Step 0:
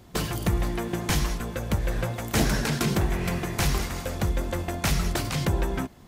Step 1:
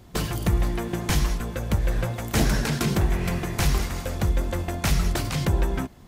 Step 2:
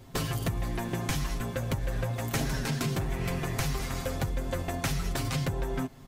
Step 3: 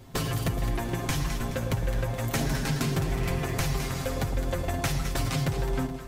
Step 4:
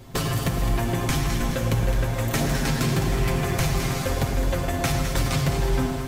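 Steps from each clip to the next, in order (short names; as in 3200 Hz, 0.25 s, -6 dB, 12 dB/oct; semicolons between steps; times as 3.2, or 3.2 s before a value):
low shelf 100 Hz +5 dB
comb 7.5 ms, depth 73%; compressor, threshold -24 dBFS, peak gain reduction 8.5 dB; gain -2.5 dB
echo with dull and thin repeats by turns 0.106 s, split 910 Hz, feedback 69%, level -6.5 dB; gain +1.5 dB
in parallel at -3.5 dB: soft clip -25 dBFS, distortion -14 dB; on the sum: plate-style reverb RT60 4.1 s, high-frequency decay 1×, DRR 3.5 dB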